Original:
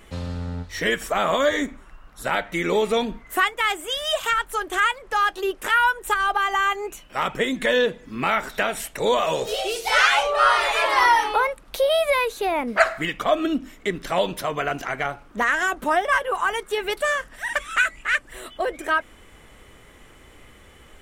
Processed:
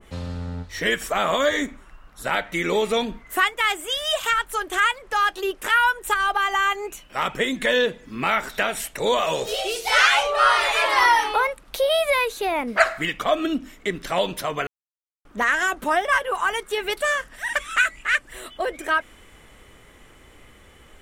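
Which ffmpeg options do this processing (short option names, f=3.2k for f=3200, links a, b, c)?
-filter_complex "[0:a]asplit=3[a][b][c];[a]atrim=end=14.67,asetpts=PTS-STARTPTS,afade=t=out:st=14.666:d=0.004:c=hsin[d];[b]atrim=start=14.67:end=15.25,asetpts=PTS-STARTPTS,volume=0[e];[c]atrim=start=15.25,asetpts=PTS-STARTPTS,afade=t=in:d=0.004:c=hsin[f];[d][e][f]concat=n=3:v=0:a=1,adynamicequalizer=threshold=0.0355:dfrequency=1500:dqfactor=0.7:tfrequency=1500:tqfactor=0.7:attack=5:release=100:ratio=0.375:range=1.5:mode=boostabove:tftype=highshelf,volume=-1dB"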